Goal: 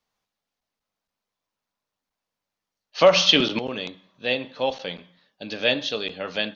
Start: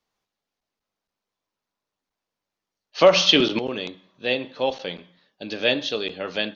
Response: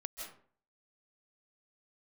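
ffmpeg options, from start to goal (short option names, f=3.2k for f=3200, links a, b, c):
-af "equalizer=f=360:w=2.8:g=-5.5"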